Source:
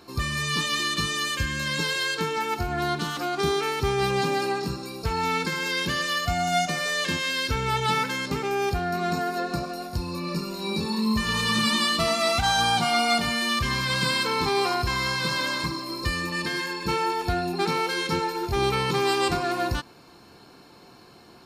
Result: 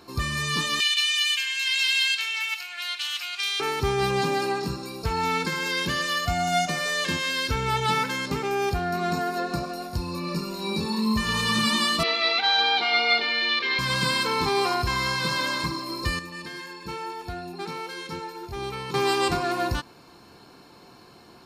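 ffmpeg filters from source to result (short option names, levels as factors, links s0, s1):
-filter_complex "[0:a]asettb=1/sr,asplit=3[s0][s1][s2];[s0]atrim=end=0.804[s3];[s1]atrim=start=0.8:end=3.6,asetpts=PTS-STARTPTS,afade=t=in:d=0.004:c=qsin,afade=t=out:st=2.796:d=0.004:c=qsin,highpass=f=2600:t=q:w=3.4[s4];[s2]atrim=start=3.596[s5];[s3][s4]acrossfade=d=0.004:c1=hsin:c2=qsin[s6];[s6][s5]acrossfade=d=0.004:c1=qsin:c2=hsin,asettb=1/sr,asplit=3[s7][s8][s9];[s7]atrim=end=12.034[s10];[s8]atrim=start=12.03:end=13.79,asetpts=PTS-STARTPTS,afade=t=in:d=0.004:c=qsin,afade=t=out:st=1.756:d=0.004:c=qsin,highpass=f=340:w=0.5412,highpass=f=340:w=1.3066,equalizer=f=440:t=q:w=4:g=6,equalizer=f=640:t=q:w=4:g=-7,equalizer=f=1100:t=q:w=4:g=-7,equalizer=f=2200:t=q:w=4:g=7,equalizer=f=3900:t=q:w=4:g=8,lowpass=f=4200:w=0.5412,lowpass=f=4200:w=1.3066[s11];[s9]atrim=start=13.786[s12];[s10][s11]acrossfade=d=0.004:c1=hsin:c2=qsin[s13];[s13][s12]acrossfade=d=0.004:c1=qsin:c2=hsin,asplit=3[s14][s15][s16];[s14]atrim=end=16.192[s17];[s15]atrim=start=16.188:end=18.942,asetpts=PTS-STARTPTS,volume=0.355[s18];[s16]atrim=start=18.938[s19];[s17][s18]acrossfade=d=0.004:c1=hsin:c2=hsin[s20];[s20][s19]acrossfade=d=0.004:c1=hsin:c2=hsin,equalizer=f=1000:w=5.7:g=2"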